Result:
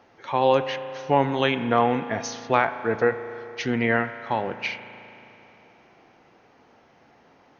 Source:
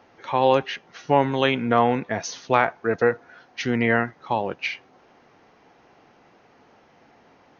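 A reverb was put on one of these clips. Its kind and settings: spring tank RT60 3.2 s, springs 36 ms, chirp 75 ms, DRR 10.5 dB; trim -1.5 dB

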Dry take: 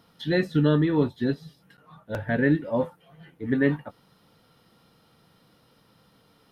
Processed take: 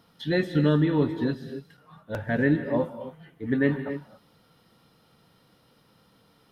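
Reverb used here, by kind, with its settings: gated-style reverb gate 300 ms rising, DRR 10 dB; trim -1 dB

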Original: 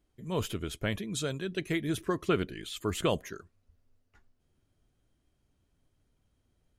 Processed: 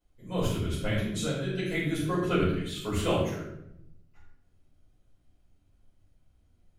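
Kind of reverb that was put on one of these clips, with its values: simulated room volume 200 m³, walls mixed, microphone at 5 m; trim -11.5 dB

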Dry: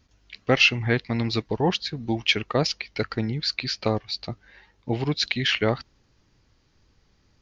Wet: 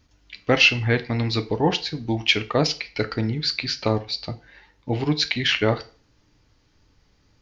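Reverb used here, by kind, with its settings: FDN reverb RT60 0.39 s, low-frequency decay 0.8×, high-frequency decay 0.9×, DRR 8 dB; trim +1.5 dB

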